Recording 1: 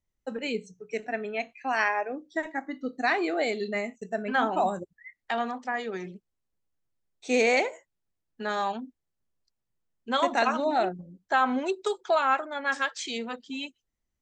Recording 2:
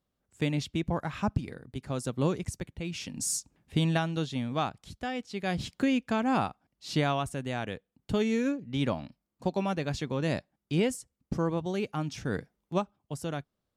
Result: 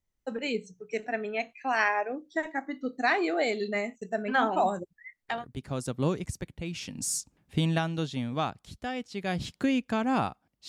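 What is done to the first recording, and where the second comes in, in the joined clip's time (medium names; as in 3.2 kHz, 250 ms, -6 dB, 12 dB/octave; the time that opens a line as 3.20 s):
recording 1
5.37 s: go over to recording 2 from 1.56 s, crossfade 0.18 s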